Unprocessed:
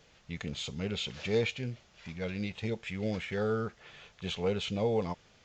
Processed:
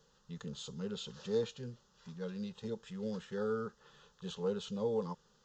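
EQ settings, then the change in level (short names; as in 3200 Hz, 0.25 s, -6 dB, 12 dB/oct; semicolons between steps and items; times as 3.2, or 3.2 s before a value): fixed phaser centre 450 Hz, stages 8; -3.5 dB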